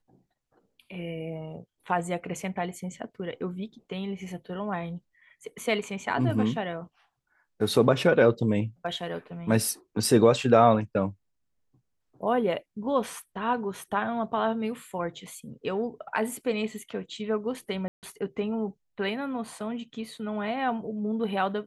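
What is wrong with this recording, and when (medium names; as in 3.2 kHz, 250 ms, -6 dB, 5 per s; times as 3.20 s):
17.88–18.03 s: dropout 148 ms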